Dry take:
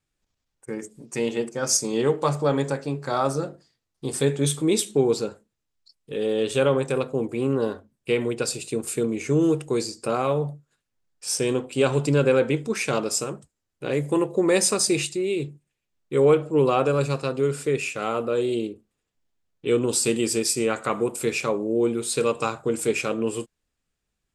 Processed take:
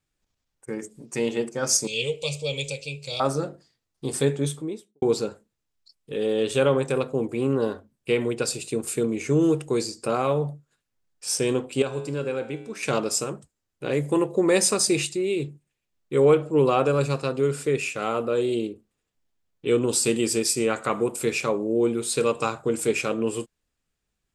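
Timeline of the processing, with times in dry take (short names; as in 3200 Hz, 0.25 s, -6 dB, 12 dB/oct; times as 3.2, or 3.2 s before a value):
1.87–3.2 EQ curve 110 Hz 0 dB, 190 Hz -12 dB, 330 Hz -23 dB, 490 Hz -2 dB, 730 Hz -19 dB, 1700 Hz -30 dB, 2400 Hz +13 dB, 4700 Hz +7 dB, 7600 Hz +6 dB, 12000 Hz 0 dB
4.15–5.02 studio fade out
11.82–12.83 resonator 60 Hz, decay 0.99 s, harmonics odd, mix 70%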